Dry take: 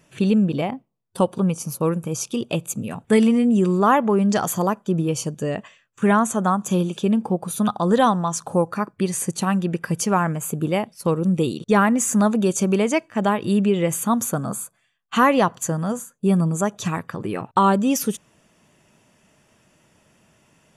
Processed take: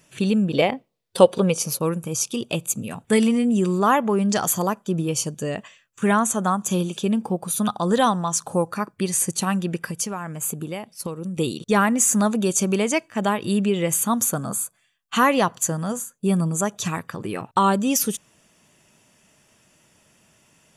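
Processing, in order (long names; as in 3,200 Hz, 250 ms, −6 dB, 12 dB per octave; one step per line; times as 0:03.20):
0:00.53–0:01.79: octave-band graphic EQ 500/2,000/4,000 Hz +11/+7/+8 dB
0:09.89–0:11.37: downward compressor 6 to 1, threshold −25 dBFS, peak gain reduction 11 dB
high-shelf EQ 2,700 Hz +8 dB
level −2.5 dB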